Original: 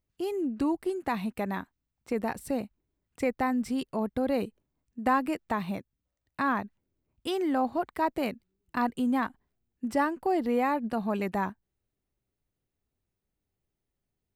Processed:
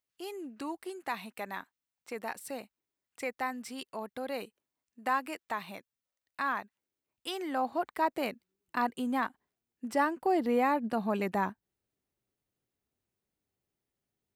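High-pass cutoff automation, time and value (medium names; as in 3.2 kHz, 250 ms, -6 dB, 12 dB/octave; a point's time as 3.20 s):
high-pass 6 dB/octave
7.27 s 1.2 kHz
7.83 s 430 Hz
9.92 s 430 Hz
10.37 s 170 Hz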